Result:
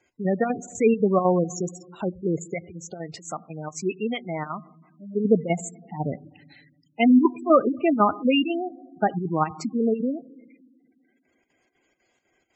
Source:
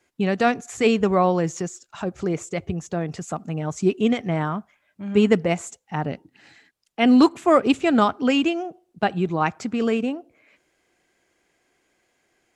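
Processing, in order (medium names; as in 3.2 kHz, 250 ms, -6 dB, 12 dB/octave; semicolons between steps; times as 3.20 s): band-stop 1.7 kHz, Q 14; square tremolo 4 Hz, depth 65%, duty 75%; 2.54–5.20 s: bass shelf 450 Hz -11 dB; reverberation RT60 1.6 s, pre-delay 4 ms, DRR 17 dB; spectral gate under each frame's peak -15 dB strong; peaking EQ 4.4 kHz +5 dB 1.3 oct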